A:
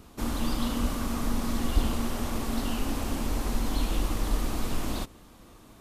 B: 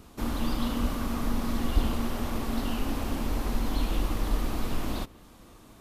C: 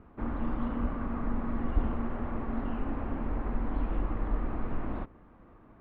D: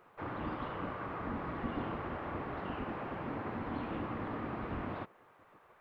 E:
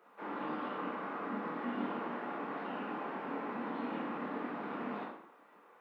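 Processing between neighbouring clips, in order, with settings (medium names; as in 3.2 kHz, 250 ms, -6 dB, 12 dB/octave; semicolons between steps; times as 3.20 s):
dynamic bell 7.9 kHz, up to -6 dB, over -57 dBFS, Q 0.92
low-pass 1.9 kHz 24 dB/octave; trim -3 dB
spectral gate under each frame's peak -10 dB weak; treble shelf 2.4 kHz +10.5 dB; trim -1 dB
steep high-pass 190 Hz 36 dB/octave; reverberation RT60 0.65 s, pre-delay 12 ms, DRR -3 dB; trim -4 dB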